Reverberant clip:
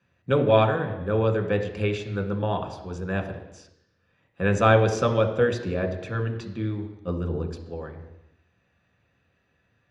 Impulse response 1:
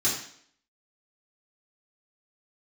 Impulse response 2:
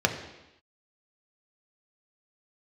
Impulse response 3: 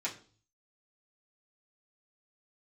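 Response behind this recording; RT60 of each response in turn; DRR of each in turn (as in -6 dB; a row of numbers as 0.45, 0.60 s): 2; 0.60 s, not exponential, 0.40 s; -8.0, 3.0, -8.0 dB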